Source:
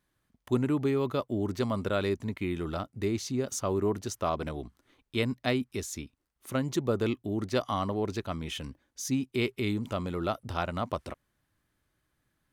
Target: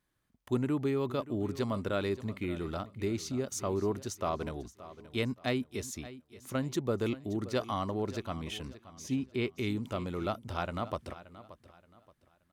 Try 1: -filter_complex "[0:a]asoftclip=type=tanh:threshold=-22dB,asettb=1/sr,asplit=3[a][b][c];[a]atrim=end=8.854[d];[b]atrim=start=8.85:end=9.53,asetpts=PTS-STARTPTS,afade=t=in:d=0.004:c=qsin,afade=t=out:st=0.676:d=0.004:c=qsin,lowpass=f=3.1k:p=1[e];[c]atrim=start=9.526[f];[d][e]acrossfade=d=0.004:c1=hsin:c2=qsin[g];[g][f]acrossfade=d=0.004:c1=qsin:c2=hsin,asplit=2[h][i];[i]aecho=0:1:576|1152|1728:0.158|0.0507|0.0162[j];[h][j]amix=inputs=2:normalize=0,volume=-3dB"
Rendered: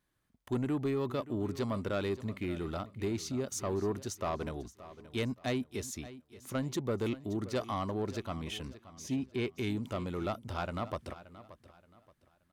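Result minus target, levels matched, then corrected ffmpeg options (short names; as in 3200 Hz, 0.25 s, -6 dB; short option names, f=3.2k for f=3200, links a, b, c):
soft clip: distortion +17 dB
-filter_complex "[0:a]asoftclip=type=tanh:threshold=-11dB,asettb=1/sr,asplit=3[a][b][c];[a]atrim=end=8.854[d];[b]atrim=start=8.85:end=9.53,asetpts=PTS-STARTPTS,afade=t=in:d=0.004:c=qsin,afade=t=out:st=0.676:d=0.004:c=qsin,lowpass=f=3.1k:p=1[e];[c]atrim=start=9.526[f];[d][e]acrossfade=d=0.004:c1=hsin:c2=qsin[g];[g][f]acrossfade=d=0.004:c1=qsin:c2=hsin,asplit=2[h][i];[i]aecho=0:1:576|1152|1728:0.158|0.0507|0.0162[j];[h][j]amix=inputs=2:normalize=0,volume=-3dB"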